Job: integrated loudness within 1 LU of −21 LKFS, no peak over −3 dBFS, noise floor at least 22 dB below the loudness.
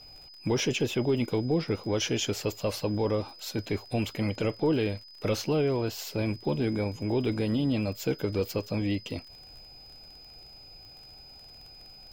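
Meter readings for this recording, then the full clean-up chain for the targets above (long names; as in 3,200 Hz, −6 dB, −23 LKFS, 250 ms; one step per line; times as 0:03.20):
crackle rate 41 per second; interfering tone 5,000 Hz; level of the tone −48 dBFS; integrated loudness −29.5 LKFS; sample peak −17.5 dBFS; target loudness −21.0 LKFS
→ click removal
notch filter 5,000 Hz, Q 30
level +8.5 dB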